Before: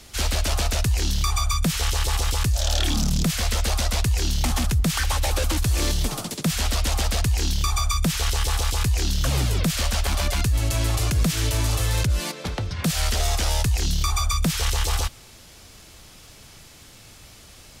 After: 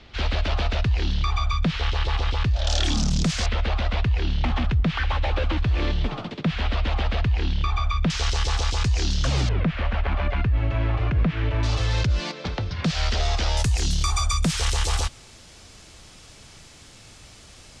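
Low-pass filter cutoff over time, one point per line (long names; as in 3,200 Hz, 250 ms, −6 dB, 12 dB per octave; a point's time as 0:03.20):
low-pass filter 24 dB per octave
3,800 Hz
from 0:02.67 6,900 Hz
from 0:03.46 3,300 Hz
from 0:08.10 6,200 Hz
from 0:09.49 2,500 Hz
from 0:11.63 5,200 Hz
from 0:13.57 9,200 Hz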